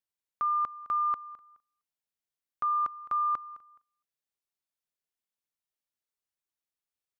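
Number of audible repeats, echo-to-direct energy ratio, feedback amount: 2, −18.0 dB, 22%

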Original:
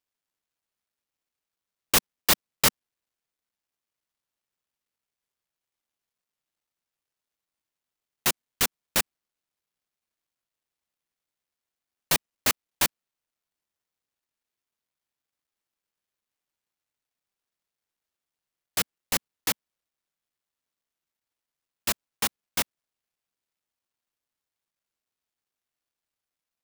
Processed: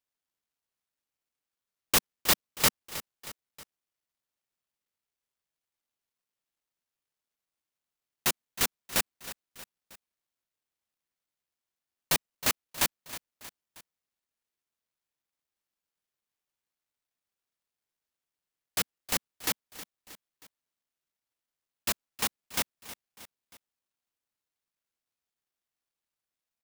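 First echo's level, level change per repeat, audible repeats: −15.0 dB, −5.5 dB, 3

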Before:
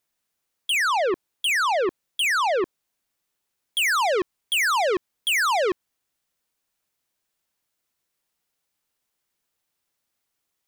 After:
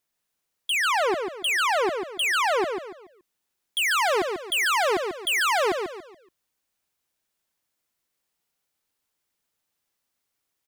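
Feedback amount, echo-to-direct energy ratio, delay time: 34%, −5.0 dB, 142 ms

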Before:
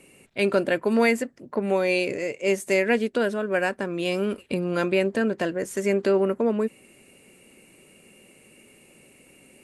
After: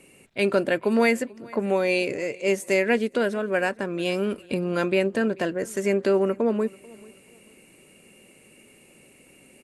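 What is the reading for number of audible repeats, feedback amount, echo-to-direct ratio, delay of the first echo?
2, 31%, −23.5 dB, 438 ms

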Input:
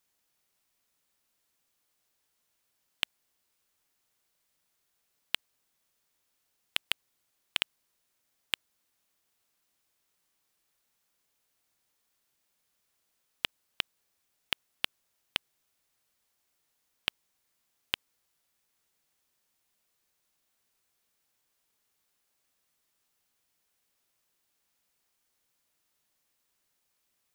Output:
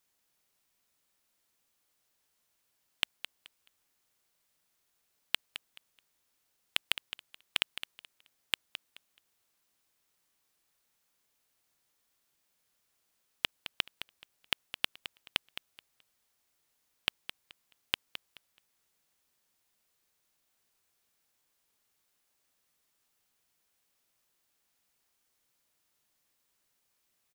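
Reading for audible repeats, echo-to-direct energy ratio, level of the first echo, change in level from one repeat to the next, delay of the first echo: 2, −11.5 dB, −11.5 dB, −13.0 dB, 214 ms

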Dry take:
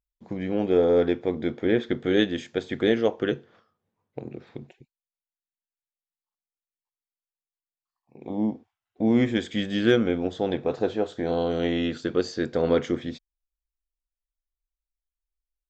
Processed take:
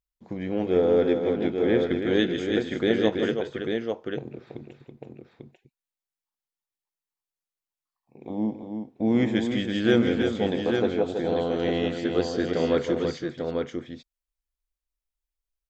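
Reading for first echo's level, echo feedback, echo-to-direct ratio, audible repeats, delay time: −12.5 dB, repeats not evenly spaced, −2.5 dB, 3, 158 ms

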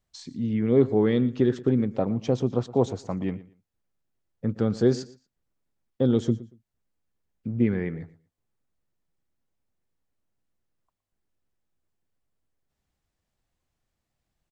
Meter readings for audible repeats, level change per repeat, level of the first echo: 2, −13.0 dB, −18.5 dB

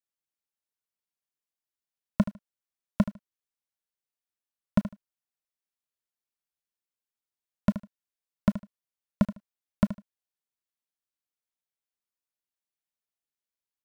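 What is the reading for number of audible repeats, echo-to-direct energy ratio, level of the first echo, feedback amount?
2, −13.0 dB, −13.0 dB, 19%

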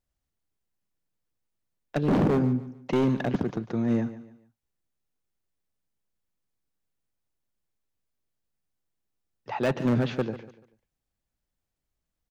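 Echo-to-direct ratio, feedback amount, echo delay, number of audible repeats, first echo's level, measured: −14.5 dB, 33%, 145 ms, 3, −15.0 dB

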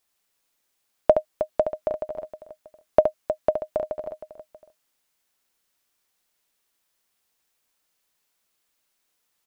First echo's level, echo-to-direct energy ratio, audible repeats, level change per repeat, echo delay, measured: −7.5 dB, −5.5 dB, 3, repeats not evenly spaced, 70 ms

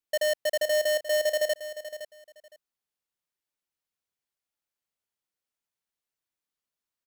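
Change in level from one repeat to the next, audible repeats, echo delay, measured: −14.5 dB, 2, 513 ms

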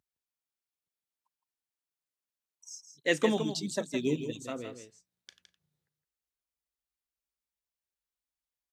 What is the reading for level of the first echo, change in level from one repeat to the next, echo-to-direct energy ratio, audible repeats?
−9.0 dB, repeats not evenly spaced, −9.0 dB, 1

